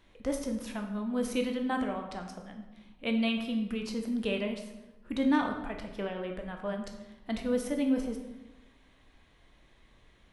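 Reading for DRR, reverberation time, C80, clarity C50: 3.0 dB, 1.1 s, 8.5 dB, 6.5 dB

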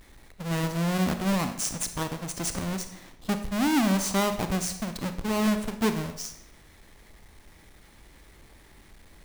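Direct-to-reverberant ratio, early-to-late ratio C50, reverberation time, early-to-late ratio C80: 8.0 dB, 10.0 dB, 0.75 s, 13.0 dB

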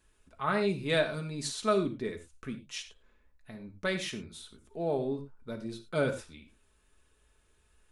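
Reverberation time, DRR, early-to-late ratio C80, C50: not exponential, 3.5 dB, 15.5 dB, 10.5 dB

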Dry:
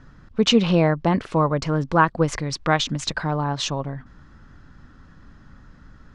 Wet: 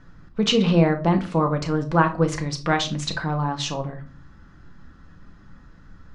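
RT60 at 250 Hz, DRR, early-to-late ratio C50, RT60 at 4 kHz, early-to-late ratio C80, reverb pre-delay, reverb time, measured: 0.70 s, 5.0 dB, 14.0 dB, 0.25 s, 20.5 dB, 6 ms, 0.40 s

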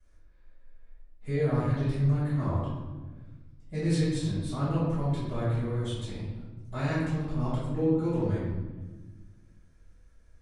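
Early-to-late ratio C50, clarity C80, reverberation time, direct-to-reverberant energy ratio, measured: -1.5 dB, 2.0 dB, 1.3 s, -15.0 dB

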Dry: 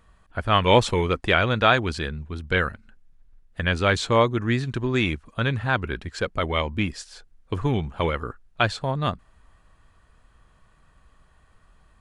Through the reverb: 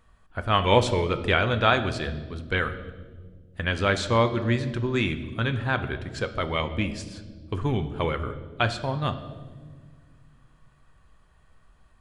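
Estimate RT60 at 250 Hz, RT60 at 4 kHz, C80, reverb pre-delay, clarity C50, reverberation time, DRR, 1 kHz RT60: 2.6 s, 1.2 s, 13.5 dB, 8 ms, 12.0 dB, 1.6 s, 8.5 dB, 1.2 s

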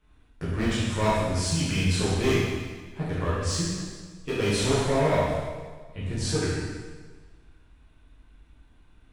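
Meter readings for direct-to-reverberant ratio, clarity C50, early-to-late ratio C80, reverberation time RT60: -10.5 dB, -2.5 dB, 0.0 dB, 1.5 s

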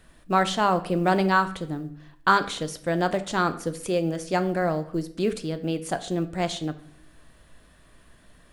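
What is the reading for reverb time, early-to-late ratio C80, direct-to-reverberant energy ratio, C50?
0.60 s, 18.0 dB, 10.0 dB, 15.0 dB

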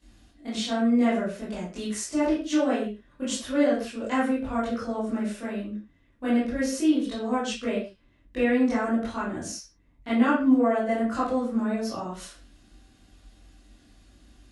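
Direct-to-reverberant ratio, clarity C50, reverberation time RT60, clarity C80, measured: -11.5 dB, 3.0 dB, not exponential, 9.0 dB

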